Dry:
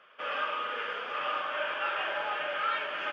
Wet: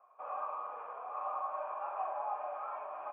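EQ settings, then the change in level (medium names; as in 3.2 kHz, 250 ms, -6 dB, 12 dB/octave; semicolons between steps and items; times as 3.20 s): cascade formant filter a; high-pass 180 Hz; low-pass 3.4 kHz; +8.5 dB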